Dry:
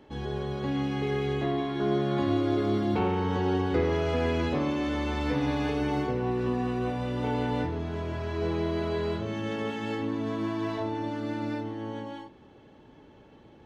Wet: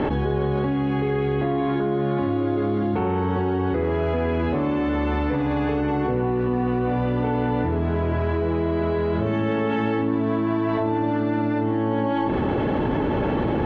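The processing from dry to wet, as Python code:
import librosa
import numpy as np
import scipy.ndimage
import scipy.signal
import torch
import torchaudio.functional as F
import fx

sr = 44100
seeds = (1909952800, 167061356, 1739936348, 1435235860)

y = scipy.signal.sosfilt(scipy.signal.butter(2, 2100.0, 'lowpass', fs=sr, output='sos'), x)
y = fx.env_flatten(y, sr, amount_pct=100)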